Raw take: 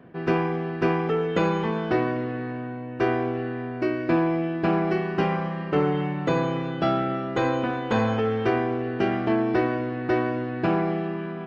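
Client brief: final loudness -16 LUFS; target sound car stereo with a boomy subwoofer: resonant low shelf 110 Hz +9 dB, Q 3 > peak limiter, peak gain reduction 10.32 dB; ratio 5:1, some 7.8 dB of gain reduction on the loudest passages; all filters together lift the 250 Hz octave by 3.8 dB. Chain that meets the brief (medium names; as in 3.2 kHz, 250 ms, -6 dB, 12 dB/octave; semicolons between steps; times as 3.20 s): peaking EQ 250 Hz +8 dB; compression 5:1, threshold -23 dBFS; resonant low shelf 110 Hz +9 dB, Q 3; trim +15.5 dB; peak limiter -8 dBFS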